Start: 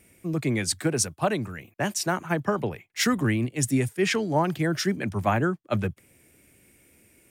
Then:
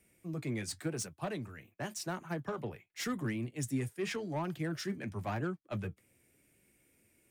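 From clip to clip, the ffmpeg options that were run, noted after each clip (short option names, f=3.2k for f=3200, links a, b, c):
-filter_complex "[0:a]acrossover=split=290[a][b];[b]asoftclip=type=tanh:threshold=-21dB[c];[a][c]amix=inputs=2:normalize=0,flanger=delay=4.8:depth=4.5:regen=-60:speed=0.9:shape=triangular,volume=-7dB"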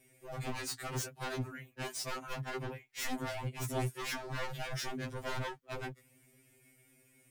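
-af "aeval=exprs='0.0141*(abs(mod(val(0)/0.0141+3,4)-2)-1)':c=same,afftfilt=real='re*2.45*eq(mod(b,6),0)':imag='im*2.45*eq(mod(b,6),0)':win_size=2048:overlap=0.75,volume=6.5dB"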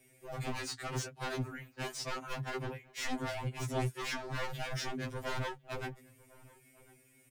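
-filter_complex "[0:a]acrossover=split=130|7800[a][b][c];[c]acompressor=threshold=-58dB:ratio=6[d];[a][b][d]amix=inputs=3:normalize=0,asplit=2[e][f];[f]adelay=1050,volume=-22dB,highshelf=f=4k:g=-23.6[g];[e][g]amix=inputs=2:normalize=0,volume=1dB"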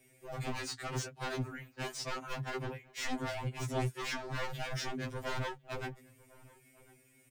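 -af "equalizer=f=11k:w=4.2:g=-6.5"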